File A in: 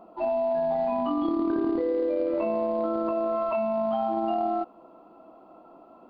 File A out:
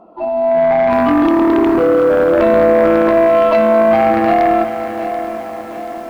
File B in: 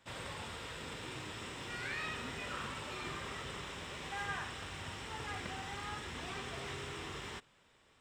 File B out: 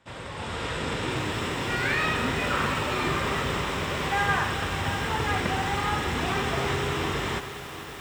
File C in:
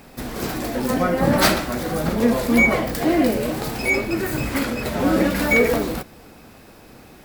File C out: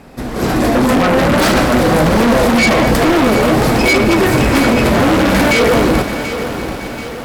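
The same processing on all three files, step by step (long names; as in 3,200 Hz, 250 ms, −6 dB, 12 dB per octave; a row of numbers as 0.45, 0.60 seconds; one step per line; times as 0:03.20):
low-pass filter 12,000 Hz 12 dB per octave
high-shelf EQ 2,200 Hz −7 dB
brickwall limiter −16 dBFS
automatic gain control gain up to 10.5 dB
harmonic generator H 4 −29 dB, 5 −6 dB, 6 −29 dB, 7 −16 dB, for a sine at −5.5 dBFS
feedback echo with a high-pass in the loop 215 ms, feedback 81%, high-pass 230 Hz, level −14.5 dB
feedback echo at a low word length 733 ms, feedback 55%, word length 6 bits, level −11 dB
level −1 dB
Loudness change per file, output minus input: +14.5, +15.0, +8.0 LU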